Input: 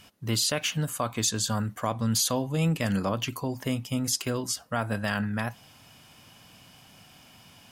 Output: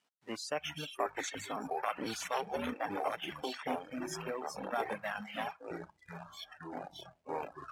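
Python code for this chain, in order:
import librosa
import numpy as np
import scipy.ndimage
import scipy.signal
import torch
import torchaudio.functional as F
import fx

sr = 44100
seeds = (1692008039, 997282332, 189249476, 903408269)

y = fx.cycle_switch(x, sr, every=2, mode='inverted', at=(1.11, 3.47))
y = fx.high_shelf(y, sr, hz=2600.0, db=-11.5)
y = fx.echo_pitch(y, sr, ms=213, semitones=-7, count=3, db_per_echo=-3.0)
y = fx.dynamic_eq(y, sr, hz=790.0, q=6.0, threshold_db=-50.0, ratio=4.0, max_db=7)
y = fx.quant_companded(y, sr, bits=4)
y = scipy.signal.sosfilt(scipy.signal.butter(2, 330.0, 'highpass', fs=sr, output='sos'), y)
y = fx.noise_reduce_blind(y, sr, reduce_db=18)
y = scipy.signal.sosfilt(scipy.signal.butter(2, 9300.0, 'lowpass', fs=sr, output='sos'), y)
y = fx.dereverb_blind(y, sr, rt60_s=1.4)
y = y * librosa.db_to_amplitude(-5.0)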